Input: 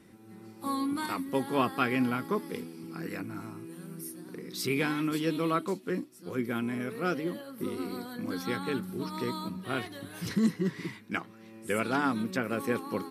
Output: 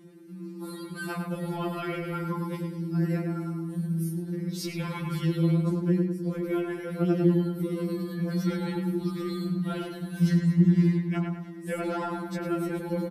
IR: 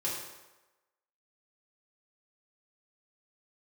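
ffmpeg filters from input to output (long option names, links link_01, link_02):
-filter_complex "[0:a]equalizer=frequency=160:width=0.45:gain=11.5,alimiter=limit=-17dB:level=0:latency=1:release=25,asplit=2[link_01][link_02];[link_02]adelay=104,lowpass=frequency=2300:poles=1,volume=-3.5dB,asplit=2[link_03][link_04];[link_04]adelay=104,lowpass=frequency=2300:poles=1,volume=0.5,asplit=2[link_05][link_06];[link_06]adelay=104,lowpass=frequency=2300:poles=1,volume=0.5,asplit=2[link_07][link_08];[link_08]adelay=104,lowpass=frequency=2300:poles=1,volume=0.5,asplit=2[link_09][link_10];[link_10]adelay=104,lowpass=frequency=2300:poles=1,volume=0.5,asplit=2[link_11][link_12];[link_12]adelay=104,lowpass=frequency=2300:poles=1,volume=0.5,asplit=2[link_13][link_14];[link_14]adelay=104,lowpass=frequency=2300:poles=1,volume=0.5[link_15];[link_01][link_03][link_05][link_07][link_09][link_11][link_13][link_15]amix=inputs=8:normalize=0,afftfilt=real='re*2.83*eq(mod(b,8),0)':imag='im*2.83*eq(mod(b,8),0)':win_size=2048:overlap=0.75"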